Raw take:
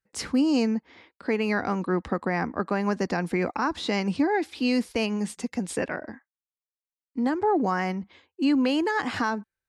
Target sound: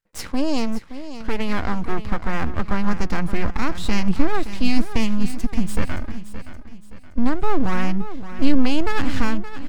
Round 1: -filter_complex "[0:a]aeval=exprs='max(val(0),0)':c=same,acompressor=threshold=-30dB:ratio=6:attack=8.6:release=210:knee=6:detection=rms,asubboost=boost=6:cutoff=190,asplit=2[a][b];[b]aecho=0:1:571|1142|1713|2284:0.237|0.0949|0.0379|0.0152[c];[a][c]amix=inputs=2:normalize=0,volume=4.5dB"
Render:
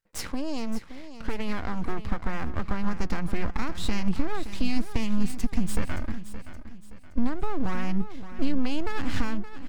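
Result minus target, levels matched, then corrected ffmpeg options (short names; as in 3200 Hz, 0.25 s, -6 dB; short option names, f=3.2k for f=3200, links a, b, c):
compressor: peak gain reduction +10.5 dB
-filter_complex "[0:a]aeval=exprs='max(val(0),0)':c=same,asubboost=boost=6:cutoff=190,asplit=2[a][b];[b]aecho=0:1:571|1142|1713|2284:0.237|0.0949|0.0379|0.0152[c];[a][c]amix=inputs=2:normalize=0,volume=4.5dB"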